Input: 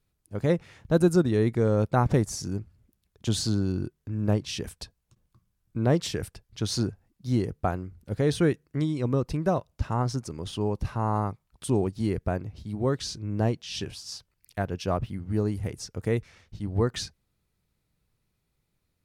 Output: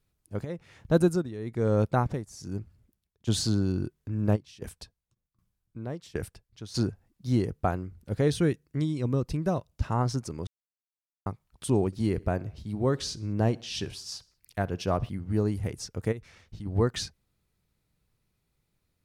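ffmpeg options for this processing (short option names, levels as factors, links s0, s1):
-filter_complex "[0:a]asplit=3[s0][s1][s2];[s0]afade=t=out:st=0.43:d=0.02[s3];[s1]tremolo=f=1.1:d=0.81,afade=t=in:st=0.43:d=0.02,afade=t=out:st=3.27:d=0.02[s4];[s2]afade=t=in:st=3.27:d=0.02[s5];[s3][s4][s5]amix=inputs=3:normalize=0,asplit=3[s6][s7][s8];[s6]afade=t=out:st=4.35:d=0.02[s9];[s7]aeval=exprs='val(0)*pow(10,-20*if(lt(mod(1.3*n/s,1),2*abs(1.3)/1000),1-mod(1.3*n/s,1)/(2*abs(1.3)/1000),(mod(1.3*n/s,1)-2*abs(1.3)/1000)/(1-2*abs(1.3)/1000))/20)':c=same,afade=t=in:st=4.35:d=0.02,afade=t=out:st=6.74:d=0.02[s10];[s8]afade=t=in:st=6.74:d=0.02[s11];[s9][s10][s11]amix=inputs=3:normalize=0,asettb=1/sr,asplit=3[s12][s13][s14];[s12]atrim=end=8.284[s15];[s13]atrim=start=8.28:end=9.83,asetpts=PTS-STARTPTS,afade=t=in:d=0.004:c=qsin,afade=t=out:st=1.546:d=0.004:c=qsin,equalizer=f=940:w=0.42:g=-5[s16];[s14]atrim=start=9.826[s17];[s15][s16]acrossfade=d=0.004:c1=hsin:c2=qsin[s18];[s18][s17]acrossfade=d=0.004:c1=qsin:c2=hsin,asettb=1/sr,asplit=3[s19][s20][s21];[s19]atrim=end=11.864[s22];[s20]atrim=start=11.86:end=15.09,asetpts=PTS-STARTPTS,afade=t=in:d=0.004:c=qsin,afade=t=out:st=3.226:d=0.004:c=qsin,aecho=1:1:63|126|189:0.0708|0.0354|0.0177,atrim=end_sample=142443[s23];[s21]atrim=start=15.086[s24];[s22][s23]acrossfade=d=0.004:c1=hsin:c2=qsin[s25];[s25][s24]acrossfade=d=0.004:c1=qsin:c2=hsin,asplit=3[s26][s27][s28];[s26]afade=t=out:st=16.11:d=0.02[s29];[s27]acompressor=threshold=0.0178:ratio=6:attack=3.2:release=140:knee=1:detection=peak,afade=t=in:st=16.11:d=0.02,afade=t=out:st=16.65:d=0.02[s30];[s28]afade=t=in:st=16.65:d=0.02[s31];[s29][s30][s31]amix=inputs=3:normalize=0,asplit=3[s32][s33][s34];[s32]atrim=end=10.47,asetpts=PTS-STARTPTS,afade=t=out:st=10.466:d=0.004:c=hsin[s35];[s33]atrim=start=10.47:end=11.26,asetpts=PTS-STARTPTS,volume=0[s36];[s34]atrim=start=11.26,asetpts=PTS-STARTPTS,afade=t=in:d=0.004:c=hsin[s37];[s35][s36][s37]concat=n=3:v=0:a=1"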